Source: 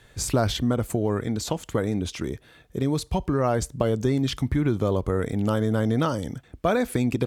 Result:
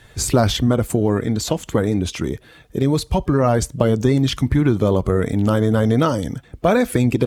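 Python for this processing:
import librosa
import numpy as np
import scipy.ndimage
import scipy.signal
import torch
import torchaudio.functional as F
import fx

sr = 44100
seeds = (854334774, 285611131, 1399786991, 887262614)

y = fx.spec_quant(x, sr, step_db=15)
y = y * 10.0 ** (7.0 / 20.0)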